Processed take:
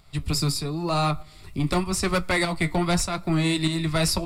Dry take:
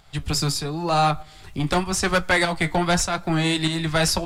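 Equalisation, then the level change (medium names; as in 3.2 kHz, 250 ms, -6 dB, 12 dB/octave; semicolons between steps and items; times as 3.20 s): graphic EQ with 31 bands 500 Hz -5 dB, 800 Hz -9 dB, 1.6 kHz -11 dB, 3.15 kHz -7 dB, 6.3 kHz -8 dB; 0.0 dB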